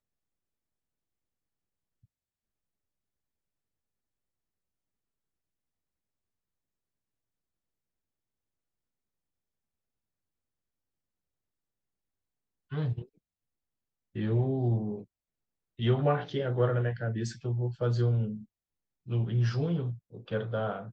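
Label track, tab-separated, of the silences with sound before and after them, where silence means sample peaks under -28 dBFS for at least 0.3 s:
12.930000	14.180000	silence
14.940000	15.810000	silence
18.300000	19.120000	silence
19.900000	20.320000	silence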